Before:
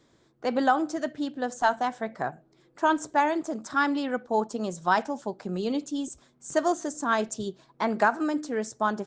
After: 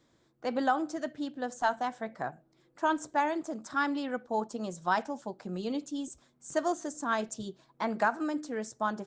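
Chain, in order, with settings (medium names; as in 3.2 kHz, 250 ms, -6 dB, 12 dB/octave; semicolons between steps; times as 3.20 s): band-stop 410 Hz, Q 12; trim -5 dB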